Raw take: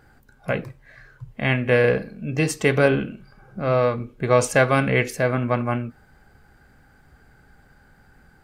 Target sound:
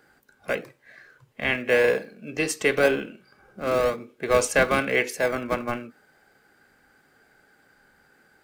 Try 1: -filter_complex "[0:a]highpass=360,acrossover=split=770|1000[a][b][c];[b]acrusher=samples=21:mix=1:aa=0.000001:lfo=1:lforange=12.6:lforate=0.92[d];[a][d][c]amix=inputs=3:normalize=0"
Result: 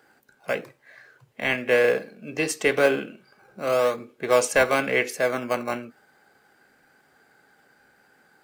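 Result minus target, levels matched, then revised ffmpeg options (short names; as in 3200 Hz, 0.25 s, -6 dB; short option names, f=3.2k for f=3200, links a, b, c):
decimation with a swept rate: distortion -31 dB
-filter_complex "[0:a]highpass=360,acrossover=split=770|1000[a][b][c];[b]acrusher=samples=41:mix=1:aa=0.000001:lfo=1:lforange=24.6:lforate=0.92[d];[a][d][c]amix=inputs=3:normalize=0"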